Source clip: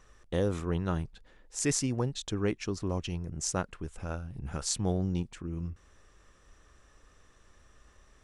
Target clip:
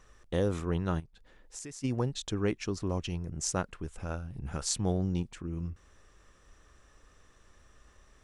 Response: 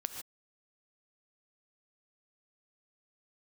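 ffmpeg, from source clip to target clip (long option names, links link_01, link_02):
-filter_complex "[0:a]asplit=3[link_01][link_02][link_03];[link_01]afade=type=out:start_time=0.99:duration=0.02[link_04];[link_02]acompressor=threshold=-42dB:ratio=8,afade=type=in:start_time=0.99:duration=0.02,afade=type=out:start_time=1.83:duration=0.02[link_05];[link_03]afade=type=in:start_time=1.83:duration=0.02[link_06];[link_04][link_05][link_06]amix=inputs=3:normalize=0"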